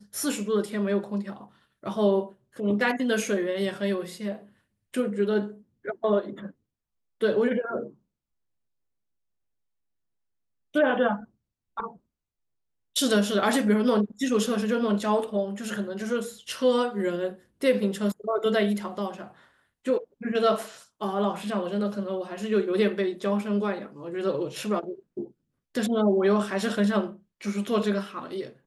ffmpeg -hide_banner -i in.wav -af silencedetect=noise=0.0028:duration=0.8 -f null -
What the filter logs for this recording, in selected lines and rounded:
silence_start: 7.95
silence_end: 10.74 | silence_duration: 2.80
silence_start: 11.97
silence_end: 12.96 | silence_duration: 0.98